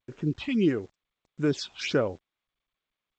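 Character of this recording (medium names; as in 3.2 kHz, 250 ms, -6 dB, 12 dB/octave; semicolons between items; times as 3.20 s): phasing stages 6, 1.6 Hz, lowest notch 400–4700 Hz; a quantiser's noise floor 10-bit, dither none; G.722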